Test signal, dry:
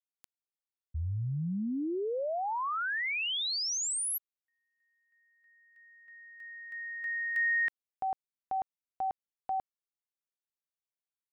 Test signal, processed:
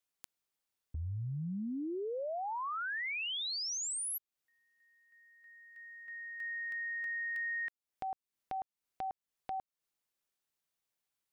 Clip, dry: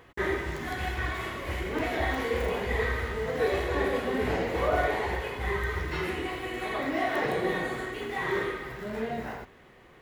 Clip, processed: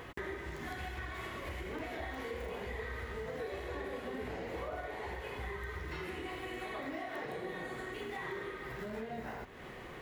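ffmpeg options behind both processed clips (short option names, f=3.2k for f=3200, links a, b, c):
-af "acompressor=threshold=-44dB:ratio=6:attack=1.3:release=558:knee=1:detection=peak,volume=7dB"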